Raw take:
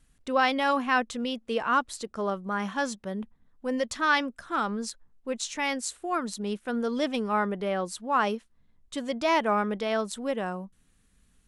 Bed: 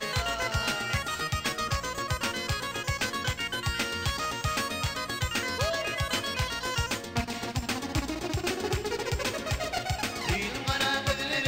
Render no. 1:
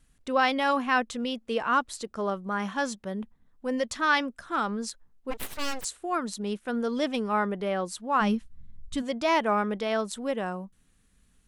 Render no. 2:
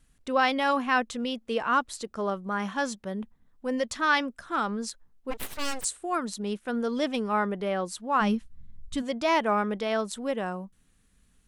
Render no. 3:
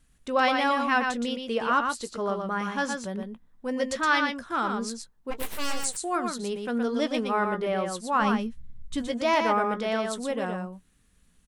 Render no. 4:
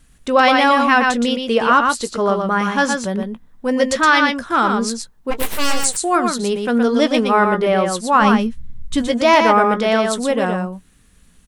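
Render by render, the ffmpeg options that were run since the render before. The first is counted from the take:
ffmpeg -i in.wav -filter_complex "[0:a]asplit=3[link_01][link_02][link_03];[link_01]afade=type=out:start_time=5.3:duration=0.02[link_04];[link_02]aeval=exprs='abs(val(0))':channel_layout=same,afade=type=in:start_time=5.3:duration=0.02,afade=type=out:start_time=5.83:duration=0.02[link_05];[link_03]afade=type=in:start_time=5.83:duration=0.02[link_06];[link_04][link_05][link_06]amix=inputs=3:normalize=0,asplit=3[link_07][link_08][link_09];[link_07]afade=type=out:start_time=8.2:duration=0.02[link_10];[link_08]asubboost=boost=10:cutoff=150,afade=type=in:start_time=8.2:duration=0.02,afade=type=out:start_time=9.01:duration=0.02[link_11];[link_09]afade=type=in:start_time=9.01:duration=0.02[link_12];[link_10][link_11][link_12]amix=inputs=3:normalize=0" out.wav
ffmpeg -i in.wav -filter_complex "[0:a]asettb=1/sr,asplit=3[link_01][link_02][link_03];[link_01]atrim=end=5.654[link_04];[link_02]atrim=start=5.65:end=6.25,asetpts=PTS-STARTPTS,afade=type=in:duration=0.004:curve=qsin,afade=type=out:start_time=0.596:duration=0.004:curve=qsin,equalizer=frequency=8700:width_type=o:width=0.38:gain=8[link_05];[link_03]atrim=start=6.246[link_06];[link_04][link_05]acrossfade=duration=0.004:curve1=hsin:curve2=qsin[link_07];[link_07][link_06]acrossfade=duration=0.004:curve1=qsin:curve2=hsin" out.wav
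ffmpeg -i in.wav -filter_complex "[0:a]asplit=2[link_01][link_02];[link_02]adelay=17,volume=-13dB[link_03];[link_01][link_03]amix=inputs=2:normalize=0,aecho=1:1:119:0.562" out.wav
ffmpeg -i in.wav -af "volume=11.5dB,alimiter=limit=-3dB:level=0:latency=1" out.wav

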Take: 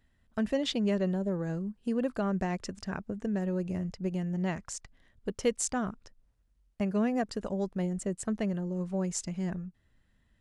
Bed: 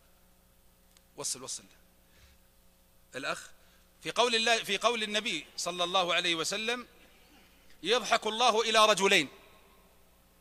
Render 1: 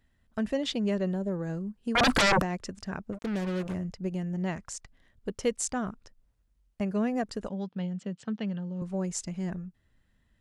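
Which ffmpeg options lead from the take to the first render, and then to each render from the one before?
ffmpeg -i in.wav -filter_complex "[0:a]asettb=1/sr,asplit=3[link_01][link_02][link_03];[link_01]atrim=end=1.954[link_04];[link_02]atrim=start=1.95:end=2.42,asetpts=PTS-STARTPTS,afade=type=in:duration=0.004:curve=qsin,afade=type=out:start_time=0.466:duration=0.004:curve=qsin,aeval=exprs='0.112*sin(PI/2*8.91*val(0)/0.112)':channel_layout=same[link_05];[link_03]atrim=start=2.416[link_06];[link_04][link_05]acrossfade=duration=0.004:curve1=hsin:curve2=qsin[link_07];[link_07][link_06]acrossfade=duration=0.004:curve1=qsin:curve2=hsin,asplit=3[link_08][link_09][link_10];[link_08]afade=type=out:start_time=3.12:duration=0.02[link_11];[link_09]acrusher=bits=5:mix=0:aa=0.5,afade=type=in:start_time=3.12:duration=0.02,afade=type=out:start_time=3.73:duration=0.02[link_12];[link_10]afade=type=in:start_time=3.73:duration=0.02[link_13];[link_11][link_12][link_13]amix=inputs=3:normalize=0,asettb=1/sr,asplit=3[link_14][link_15][link_16];[link_14]atrim=end=7.494[link_17];[link_15]atrim=start=7.49:end=8.82,asetpts=PTS-STARTPTS,afade=type=in:duration=0.004:curve=qsin,afade=type=out:start_time=1.326:duration=0.004:curve=qsin,highpass=frequency=130:width=0.5412,highpass=frequency=130:width=1.3066,equalizer=frequency=360:width_type=q:width=4:gain=-10,equalizer=frequency=640:width_type=q:width=4:gain=-9,equalizer=frequency=1100:width_type=q:width=4:gain=-4,equalizer=frequency=2000:width_type=q:width=4:gain=-4,equalizer=frequency=3200:width_type=q:width=4:gain=7,lowpass=frequency=4900:width=0.5412,lowpass=frequency=4900:width=1.3066[link_18];[link_16]atrim=start=8.816[link_19];[link_17][link_18]acrossfade=duration=0.004:curve1=hsin:curve2=qsin[link_20];[link_20][link_19]acrossfade=duration=0.004:curve1=qsin:curve2=hsin" out.wav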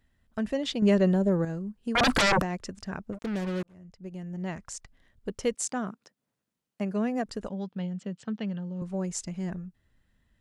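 ffmpeg -i in.wav -filter_complex "[0:a]asettb=1/sr,asplit=3[link_01][link_02][link_03];[link_01]atrim=end=0.824[link_04];[link_02]atrim=start=0.82:end=1.45,asetpts=PTS-STARTPTS,afade=type=in:duration=0.004:curve=qsin,afade=type=out:start_time=0.626:duration=0.004:curve=qsin,acontrast=81[link_05];[link_03]atrim=start=1.446[link_06];[link_04][link_05]acrossfade=duration=0.004:curve1=hsin:curve2=qsin[link_07];[link_07][link_06]acrossfade=duration=0.004:curve1=qsin:curve2=hsin,asettb=1/sr,asplit=3[link_08][link_09][link_10];[link_08]atrim=end=5.544[link_11];[link_09]atrim=start=5.54:end=7.26,asetpts=PTS-STARTPTS,afade=type=in:duration=0.004:curve=qsin,afade=type=out:start_time=1.716:duration=0.004:curve=qsin,highpass=frequency=150:width=0.5412,highpass=frequency=150:width=1.3066[link_12];[link_10]atrim=start=7.256[link_13];[link_11][link_12]acrossfade=duration=0.004:curve1=hsin:curve2=qsin[link_14];[link_14][link_13]acrossfade=duration=0.004:curve1=qsin:curve2=hsin,asplit=2[link_15][link_16];[link_15]atrim=end=3.63,asetpts=PTS-STARTPTS,afade=type=out:start_time=3.626:duration=0.004:curve=hsin[link_17];[link_16]atrim=start=3.63,asetpts=PTS-STARTPTS,afade=type=in:duration=1.13[link_18];[link_17][link_18]concat=n=2:v=0:a=1" out.wav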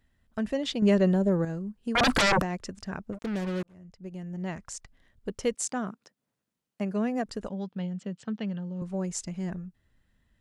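ffmpeg -i in.wav -af anull out.wav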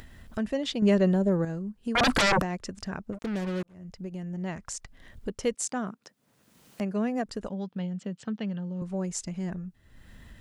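ffmpeg -i in.wav -af "acompressor=mode=upward:threshold=-31dB:ratio=2.5" out.wav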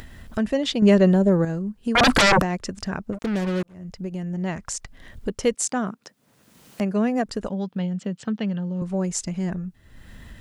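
ffmpeg -i in.wav -af "volume=6.5dB" out.wav

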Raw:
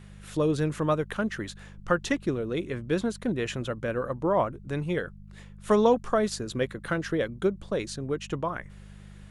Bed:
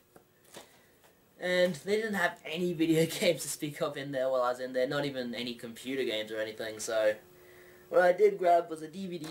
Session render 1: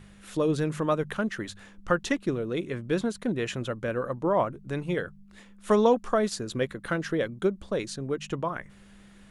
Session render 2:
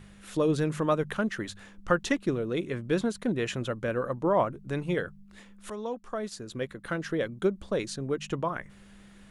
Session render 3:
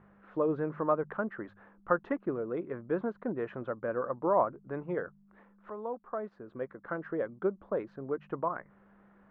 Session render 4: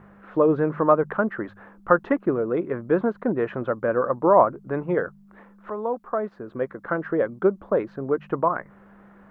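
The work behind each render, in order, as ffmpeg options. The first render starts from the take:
ffmpeg -i in.wav -af "bandreject=frequency=50:width_type=h:width=4,bandreject=frequency=100:width_type=h:width=4,bandreject=frequency=150:width_type=h:width=4" out.wav
ffmpeg -i in.wav -filter_complex "[0:a]asplit=2[link_01][link_02];[link_01]atrim=end=5.7,asetpts=PTS-STARTPTS,afade=type=out:start_time=5.696:duration=0.004:curve=hsin:silence=0.125893[link_03];[link_02]atrim=start=5.7,asetpts=PTS-STARTPTS,afade=type=in:duration=1.92:silence=0.125893[link_04];[link_03][link_04]concat=n=2:v=0:a=1" out.wav
ffmpeg -i in.wav -af "lowpass=frequency=1300:width=0.5412,lowpass=frequency=1300:width=1.3066,aemphasis=mode=production:type=riaa" out.wav
ffmpeg -i in.wav -af "volume=10.5dB,alimiter=limit=-3dB:level=0:latency=1" out.wav

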